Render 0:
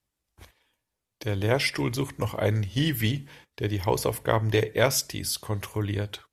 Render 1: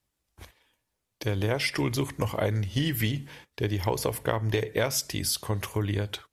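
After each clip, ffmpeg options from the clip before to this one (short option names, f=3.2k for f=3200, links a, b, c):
-af "acompressor=threshold=-25dB:ratio=6,volume=2.5dB"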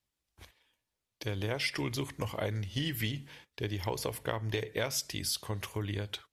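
-af "equalizer=f=3.5k:w=0.72:g=4.5,volume=-7.5dB"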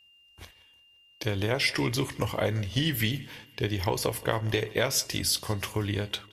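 -filter_complex "[0:a]aeval=exprs='val(0)+0.000631*sin(2*PI*2800*n/s)':c=same,asplit=2[a][b];[b]adelay=24,volume=-13.5dB[c];[a][c]amix=inputs=2:normalize=0,aecho=1:1:173|346|519|692:0.0794|0.0413|0.0215|0.0112,volume=6.5dB"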